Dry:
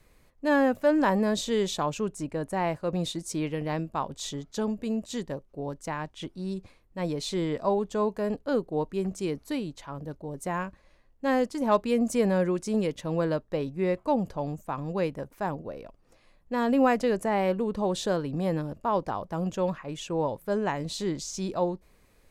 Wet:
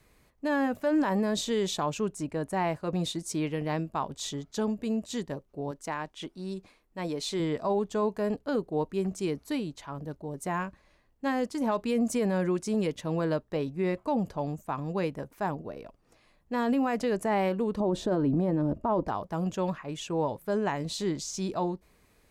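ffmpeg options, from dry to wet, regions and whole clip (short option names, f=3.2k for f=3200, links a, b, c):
-filter_complex "[0:a]asettb=1/sr,asplit=3[a][b][c];[a]atrim=end=5.714[d];[b]atrim=start=5.71:end=7.4,asetpts=PTS-STARTPTS,afade=t=in:d=0.004:c=qsin,afade=t=out:st=1.686:d=0.004:c=qsin,equalizer=f=89:w=1.1:g=-14.5,asoftclip=type=hard:threshold=-21.5dB[e];[c]atrim=start=7.396[f];[d][e]acrossfade=d=0.004:c1=hsin:c2=qsin[g];[g][f]acrossfade=d=0.004:c1=qsin:c2=hsin,asettb=1/sr,asplit=3[h][i][j];[h]atrim=end=17.804[k];[i]atrim=start=17.8:end=19.08,asetpts=PTS-STARTPTS,afade=t=in:d=0.004:c=qsin,afade=t=out:st=1.276:d=0.004:c=qsin,tiltshelf=f=1.4k:g=9,aecho=1:1:3.2:0.3,atrim=end_sample=56448[l];[j]atrim=start=19.076[m];[k][l]acrossfade=d=0.004:c1=hsin:c2=qsin[n];[n][m]acrossfade=d=0.004:c1=qsin:c2=hsin,highpass=f=45:p=1,bandreject=f=530:w=12,alimiter=limit=-19dB:level=0:latency=1:release=32"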